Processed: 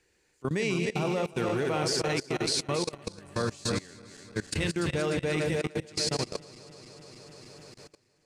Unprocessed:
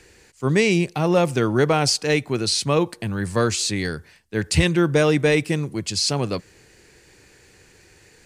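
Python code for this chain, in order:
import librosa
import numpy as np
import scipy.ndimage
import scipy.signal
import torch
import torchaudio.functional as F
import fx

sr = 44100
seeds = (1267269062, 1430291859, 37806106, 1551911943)

y = fx.reverse_delay_fb(x, sr, ms=149, feedback_pct=81, wet_db=-6.0)
y = fx.low_shelf(y, sr, hz=160.0, db=-3.5)
y = fx.level_steps(y, sr, step_db=21)
y = y * 10.0 ** (-7.0 / 20.0)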